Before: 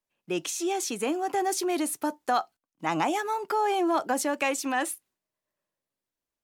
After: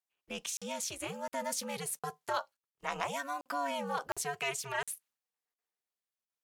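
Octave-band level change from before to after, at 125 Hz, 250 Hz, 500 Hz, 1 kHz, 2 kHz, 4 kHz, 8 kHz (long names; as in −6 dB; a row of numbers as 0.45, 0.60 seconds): −3.5, −15.5, −10.0, −10.0, −6.0, −5.0, −5.5 decibels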